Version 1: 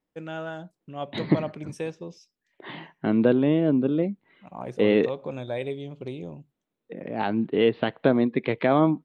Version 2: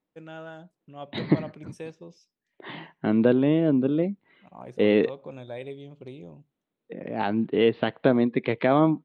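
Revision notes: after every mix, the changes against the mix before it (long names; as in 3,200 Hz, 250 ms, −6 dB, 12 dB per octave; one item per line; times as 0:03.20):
first voice −6.5 dB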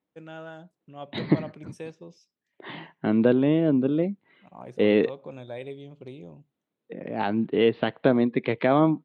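master: add high-pass filter 58 Hz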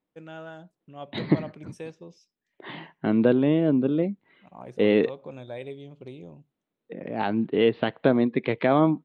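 master: remove high-pass filter 58 Hz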